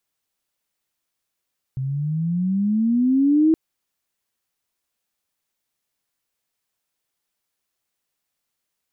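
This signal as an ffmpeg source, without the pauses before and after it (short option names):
-f lavfi -i "aevalsrc='pow(10,(-12+10.5*(t/1.77-1))/20)*sin(2*PI*129*1.77/(16*log(2)/12)*(exp(16*log(2)/12*t/1.77)-1))':d=1.77:s=44100"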